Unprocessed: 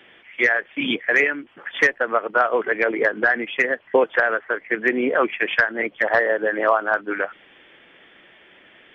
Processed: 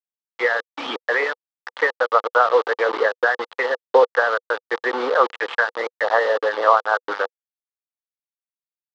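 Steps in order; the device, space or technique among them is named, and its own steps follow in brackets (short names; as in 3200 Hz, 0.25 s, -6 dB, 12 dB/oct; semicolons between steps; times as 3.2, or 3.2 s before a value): hand-held game console (bit-crush 4-bit; speaker cabinet 430–4100 Hz, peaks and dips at 490 Hz +10 dB, 870 Hz +9 dB, 1200 Hz +9 dB, 2400 Hz -9 dB); gain -3 dB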